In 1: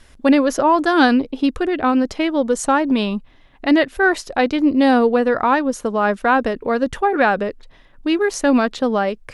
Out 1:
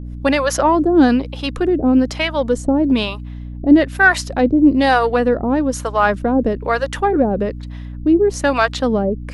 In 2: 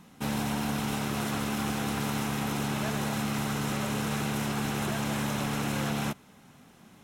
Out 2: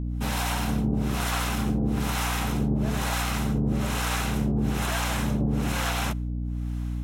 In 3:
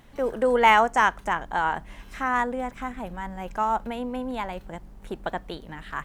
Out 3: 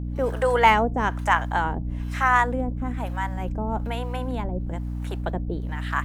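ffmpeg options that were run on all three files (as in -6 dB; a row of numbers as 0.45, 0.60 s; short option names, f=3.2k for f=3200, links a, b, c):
-filter_complex "[0:a]aeval=exprs='0.891*(cos(1*acos(clip(val(0)/0.891,-1,1)))-cos(1*PI/2))+0.0251*(cos(5*acos(clip(val(0)/0.891,-1,1)))-cos(5*PI/2))':c=same,acrossover=split=550[a][b];[a]aeval=exprs='val(0)*(1-1/2+1/2*cos(2*PI*1.1*n/s))':c=same[c];[b]aeval=exprs='val(0)*(1-1/2-1/2*cos(2*PI*1.1*n/s))':c=same[d];[c][d]amix=inputs=2:normalize=0,aeval=exprs='val(0)+0.02*(sin(2*PI*60*n/s)+sin(2*PI*2*60*n/s)/2+sin(2*PI*3*60*n/s)/3+sin(2*PI*4*60*n/s)/4+sin(2*PI*5*60*n/s)/5)':c=same,volume=6dB"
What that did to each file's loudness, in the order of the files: +1.5, +4.0, +1.0 LU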